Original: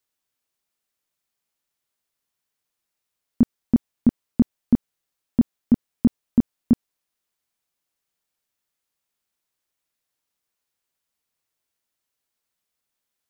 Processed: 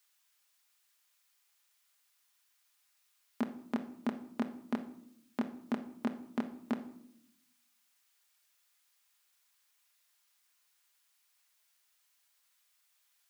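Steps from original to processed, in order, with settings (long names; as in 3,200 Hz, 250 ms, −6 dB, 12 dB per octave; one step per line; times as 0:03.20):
high-pass filter 1,100 Hz 12 dB per octave
convolution reverb RT60 0.75 s, pre-delay 5 ms, DRR 6 dB
level +8 dB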